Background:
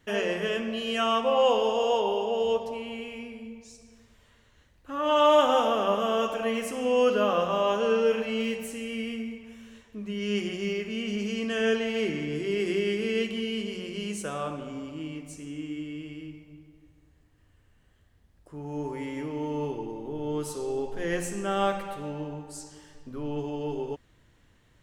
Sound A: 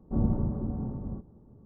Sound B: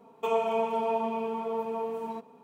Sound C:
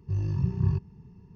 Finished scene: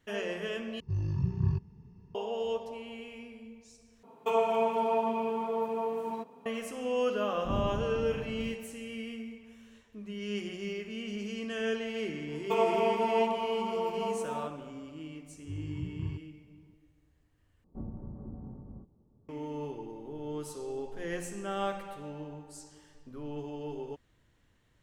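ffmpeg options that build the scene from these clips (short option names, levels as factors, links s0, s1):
-filter_complex "[3:a]asplit=2[s0][s1];[2:a]asplit=2[s2][s3];[1:a]asplit=2[s4][s5];[0:a]volume=0.447[s6];[s3]highpass=f=220:w=0.5412,highpass=f=220:w=1.3066[s7];[s5]acompressor=threshold=0.0447:ratio=6:attack=42:release=530:knee=1:detection=peak[s8];[s6]asplit=4[s9][s10][s11][s12];[s9]atrim=end=0.804[s13];[s0]atrim=end=1.35,asetpts=PTS-STARTPTS,volume=0.668[s14];[s10]atrim=start=2.146:end=4.034[s15];[s2]atrim=end=2.43[s16];[s11]atrim=start=6.456:end=17.644[s17];[s8]atrim=end=1.65,asetpts=PTS-STARTPTS,volume=0.282[s18];[s12]atrim=start=19.286[s19];[s4]atrim=end=1.65,asetpts=PTS-STARTPTS,volume=0.447,afade=t=in:d=0.004:c=hsin,afade=t=out:st=1.646:d=0.004:c=hsin,adelay=7340[s20];[s7]atrim=end=2.43,asetpts=PTS-STARTPTS,volume=0.944,afade=t=in:d=0.004:c=hsin,afade=t=out:st=2.426:d=0.004:c=hsin,adelay=12270[s21];[s1]atrim=end=1.35,asetpts=PTS-STARTPTS,volume=0.266,afade=t=in:d=0.004:c=hsin,afade=t=out:st=1.346:d=0.004:c=hsin,adelay=15390[s22];[s13][s14]acrossfade=d=0.004:c1=hsin:c2=hsin[s23];[s23][s15]acrossfade=d=0.004:c1=hsin:c2=hsin[s24];[s24][s16]acrossfade=d=0.004:c1=hsin:c2=hsin[s25];[s25][s17]acrossfade=d=0.004:c1=hsin:c2=hsin[s26];[s26][s18]acrossfade=d=0.004:c1=hsin:c2=hsin[s27];[s27][s19]acrossfade=d=0.004:c1=hsin:c2=hsin[s28];[s28][s20][s21][s22]amix=inputs=4:normalize=0"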